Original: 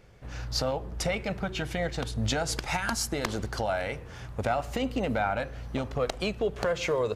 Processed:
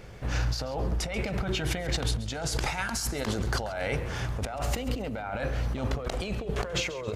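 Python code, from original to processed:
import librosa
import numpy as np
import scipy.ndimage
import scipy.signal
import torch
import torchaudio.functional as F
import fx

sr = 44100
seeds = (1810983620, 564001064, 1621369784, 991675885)

p1 = fx.over_compress(x, sr, threshold_db=-36.0, ratio=-1.0)
p2 = p1 + fx.echo_feedback(p1, sr, ms=136, feedback_pct=35, wet_db=-16.0, dry=0)
y = p2 * librosa.db_to_amplitude(5.0)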